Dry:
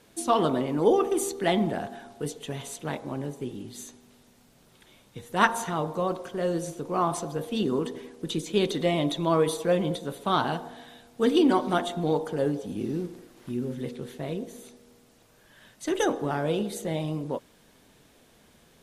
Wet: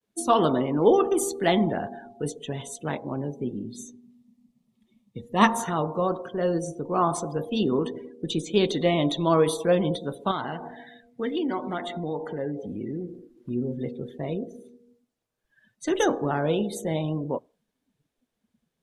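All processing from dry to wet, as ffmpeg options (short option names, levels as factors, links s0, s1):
-filter_complex "[0:a]asettb=1/sr,asplit=3[s0][s1][s2];[s0]atrim=end=3.364[s3];[s1]atrim=start=3.36:end=5.6,asetpts=PTS-STARTPTS,afade=t=in:d=0.004:c=qsin,afade=t=out:st=2.236:d=0.004:c=qsin,asuperstop=centerf=1500:order=4:qfactor=4.3,equalizer=f=220:w=5.1:g=8[s4];[s2]atrim=start=5.596[s5];[s3][s4]acrossfade=d=0.004:c1=hsin:c2=qsin[s6];[s6][s5]acrossfade=d=0.004:c1=qsin:c2=hsin,asettb=1/sr,asplit=3[s7][s8][s9];[s7]atrim=end=10.314[s10];[s8]atrim=start=10.31:end=13.08,asetpts=PTS-STARTPTS,afade=t=in:d=0.004:c=qsin,afade=t=out:st=2.766:d=0.004:c=qsin,equalizer=f=2000:w=4.6:g=11,acompressor=threshold=0.02:ratio=2:attack=3.2:release=140:knee=1:detection=peak,asoftclip=type=hard:threshold=0.0841[s11];[s9]atrim=start=13.076[s12];[s10][s11]acrossfade=d=0.004:c1=hsin:c2=qsin[s13];[s13][s12]acrossfade=d=0.004:c1=qsin:c2=hsin,agate=range=0.0224:threshold=0.00158:ratio=3:detection=peak,afftdn=nr=25:nf=-44,volume=1.33"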